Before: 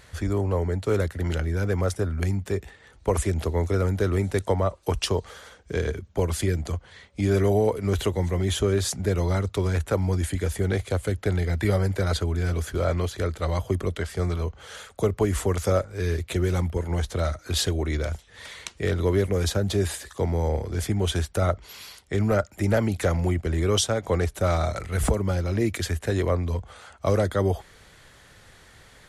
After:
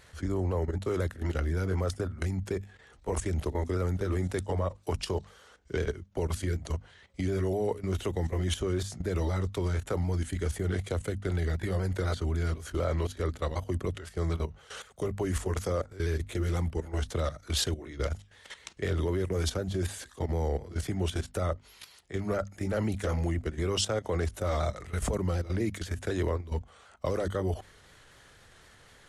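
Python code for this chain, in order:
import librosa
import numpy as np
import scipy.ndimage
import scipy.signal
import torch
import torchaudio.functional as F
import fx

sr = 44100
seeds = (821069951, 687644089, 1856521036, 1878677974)

y = fx.pitch_ramps(x, sr, semitones=-1.5, every_ms=251)
y = fx.level_steps(y, sr, step_db=14)
y = fx.hum_notches(y, sr, base_hz=50, count=5)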